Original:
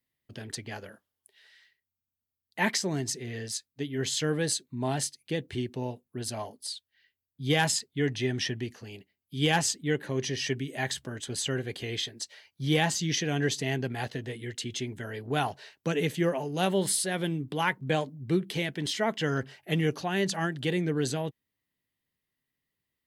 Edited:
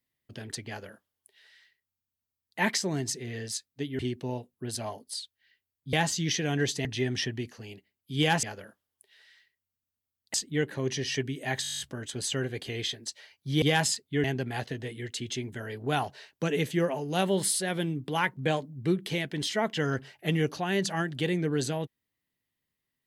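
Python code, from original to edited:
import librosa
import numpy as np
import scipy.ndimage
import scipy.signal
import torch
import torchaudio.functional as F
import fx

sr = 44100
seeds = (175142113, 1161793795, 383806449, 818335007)

y = fx.edit(x, sr, fx.duplicate(start_s=0.68, length_s=1.91, to_s=9.66),
    fx.cut(start_s=3.99, length_s=1.53),
    fx.swap(start_s=7.46, length_s=0.62, other_s=12.76, other_length_s=0.92),
    fx.stutter(start_s=10.94, slice_s=0.02, count=10), tone=tone)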